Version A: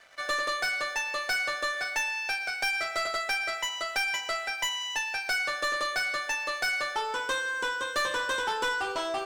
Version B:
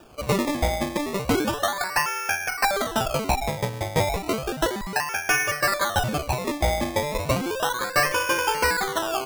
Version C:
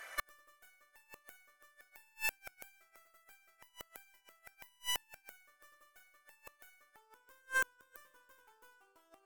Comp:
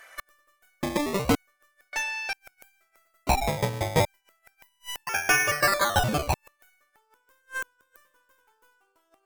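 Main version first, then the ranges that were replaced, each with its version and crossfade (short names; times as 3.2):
C
0.83–1.35 from B
1.93–2.33 from A
3.27–4.05 from B
5.07–6.34 from B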